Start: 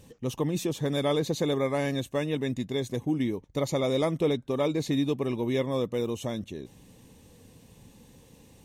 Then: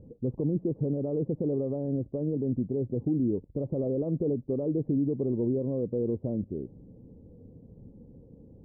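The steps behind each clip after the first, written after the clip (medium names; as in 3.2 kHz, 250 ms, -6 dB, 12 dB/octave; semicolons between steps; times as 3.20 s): peak limiter -23 dBFS, peak gain reduction 9 dB; inverse Chebyshev low-pass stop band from 3.1 kHz, stop band 80 dB; trim +4 dB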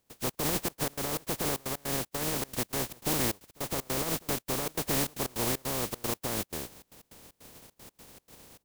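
spectral contrast reduction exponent 0.2; trance gate ".xx.xxx.x" 154 bpm -24 dB; trim -1.5 dB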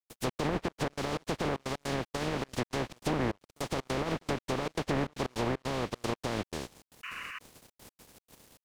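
painted sound noise, 7.03–7.39 s, 1–3 kHz -42 dBFS; low-pass that closes with the level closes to 1.9 kHz, closed at -25.5 dBFS; crossover distortion -56.5 dBFS; trim +2 dB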